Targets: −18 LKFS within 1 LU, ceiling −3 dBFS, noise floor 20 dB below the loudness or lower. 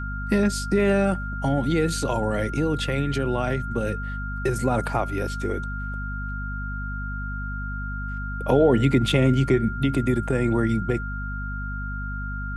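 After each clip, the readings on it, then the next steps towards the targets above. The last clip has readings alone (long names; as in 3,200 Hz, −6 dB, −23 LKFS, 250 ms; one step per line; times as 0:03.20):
mains hum 50 Hz; hum harmonics up to 250 Hz; level of the hum −28 dBFS; interfering tone 1,400 Hz; level of the tone −33 dBFS; integrated loudness −24.5 LKFS; sample peak −6.5 dBFS; target loudness −18.0 LKFS
→ hum removal 50 Hz, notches 5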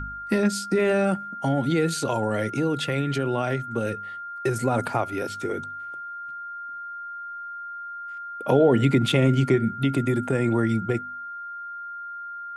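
mains hum none found; interfering tone 1,400 Hz; level of the tone −33 dBFS
→ notch filter 1,400 Hz, Q 30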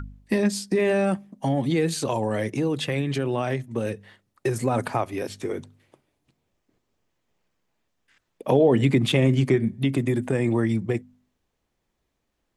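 interfering tone none found; integrated loudness −24.0 LKFS; sample peak −6.5 dBFS; target loudness −18.0 LKFS
→ level +6 dB
brickwall limiter −3 dBFS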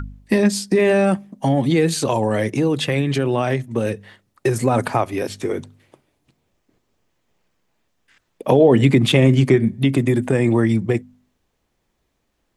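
integrated loudness −18.5 LKFS; sample peak −3.0 dBFS; background noise floor −71 dBFS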